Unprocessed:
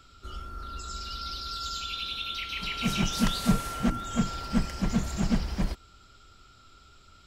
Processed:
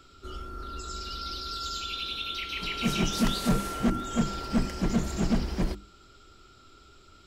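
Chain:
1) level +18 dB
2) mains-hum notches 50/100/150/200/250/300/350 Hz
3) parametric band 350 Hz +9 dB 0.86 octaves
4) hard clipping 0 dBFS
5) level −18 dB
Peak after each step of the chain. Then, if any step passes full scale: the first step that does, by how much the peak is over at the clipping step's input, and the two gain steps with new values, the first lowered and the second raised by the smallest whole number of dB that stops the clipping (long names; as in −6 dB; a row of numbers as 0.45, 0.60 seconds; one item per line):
+7.5, +6.0, +8.5, 0.0, −18.0 dBFS
step 1, 8.5 dB
step 1 +9 dB, step 5 −9 dB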